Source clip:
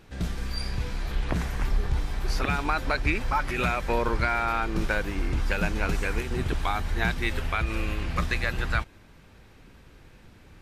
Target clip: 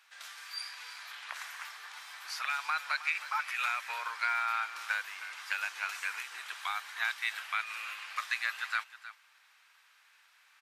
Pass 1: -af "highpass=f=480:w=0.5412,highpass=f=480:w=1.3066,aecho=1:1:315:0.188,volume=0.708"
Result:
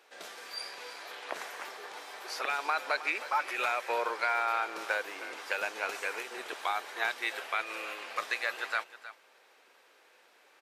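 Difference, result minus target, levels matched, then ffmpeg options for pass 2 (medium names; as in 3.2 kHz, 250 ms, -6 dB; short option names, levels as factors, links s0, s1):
500 Hz band +19.0 dB
-af "highpass=f=1100:w=0.5412,highpass=f=1100:w=1.3066,aecho=1:1:315:0.188,volume=0.708"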